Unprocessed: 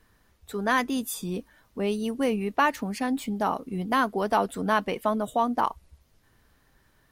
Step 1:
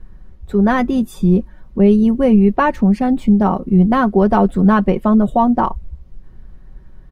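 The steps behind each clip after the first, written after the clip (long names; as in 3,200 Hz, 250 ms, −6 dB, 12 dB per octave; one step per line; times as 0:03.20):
spectral tilt −4.5 dB per octave
comb filter 5.4 ms, depth 50%
level +6 dB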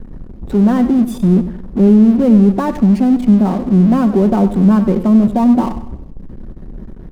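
in parallel at −6 dB: fuzz pedal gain 39 dB, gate −48 dBFS
on the sum: drawn EQ curve 100 Hz 0 dB, 230 Hz +9 dB, 1,700 Hz −6 dB
feedback echo with a swinging delay time 96 ms, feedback 40%, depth 61 cents, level −12.5 dB
level −7.5 dB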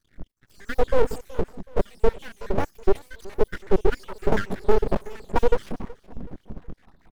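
time-frequency cells dropped at random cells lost 72%
repeating echo 373 ms, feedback 43%, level −20 dB
full-wave rectification
level −1.5 dB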